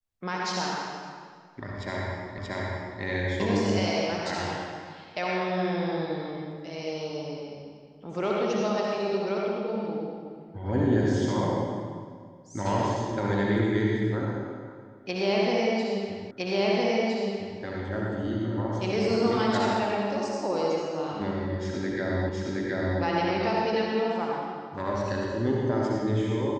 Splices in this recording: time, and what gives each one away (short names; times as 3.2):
2.38 repeat of the last 0.63 s
16.31 repeat of the last 1.31 s
22.29 repeat of the last 0.72 s